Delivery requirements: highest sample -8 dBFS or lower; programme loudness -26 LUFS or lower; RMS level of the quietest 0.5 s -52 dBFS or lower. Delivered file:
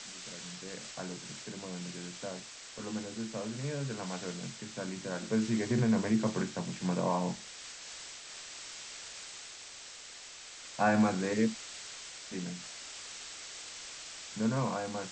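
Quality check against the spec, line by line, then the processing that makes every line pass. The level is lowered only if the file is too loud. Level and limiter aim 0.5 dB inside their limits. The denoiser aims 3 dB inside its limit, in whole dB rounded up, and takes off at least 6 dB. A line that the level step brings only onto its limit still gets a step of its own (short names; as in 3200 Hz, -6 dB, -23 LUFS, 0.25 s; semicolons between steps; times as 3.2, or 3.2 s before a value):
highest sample -15.0 dBFS: OK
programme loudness -36.0 LUFS: OK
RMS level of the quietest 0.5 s -49 dBFS: fail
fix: denoiser 6 dB, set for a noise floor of -49 dBFS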